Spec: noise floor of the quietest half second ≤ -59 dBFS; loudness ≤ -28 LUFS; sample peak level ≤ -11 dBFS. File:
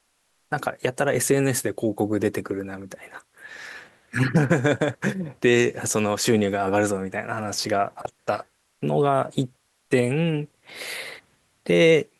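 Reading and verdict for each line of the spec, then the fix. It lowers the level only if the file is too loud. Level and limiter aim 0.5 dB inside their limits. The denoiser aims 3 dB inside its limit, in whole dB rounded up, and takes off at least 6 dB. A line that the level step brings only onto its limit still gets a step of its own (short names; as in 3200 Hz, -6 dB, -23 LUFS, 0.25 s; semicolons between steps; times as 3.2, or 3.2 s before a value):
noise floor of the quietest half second -68 dBFS: OK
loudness -23.5 LUFS: fail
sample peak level -5.5 dBFS: fail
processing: gain -5 dB; limiter -11.5 dBFS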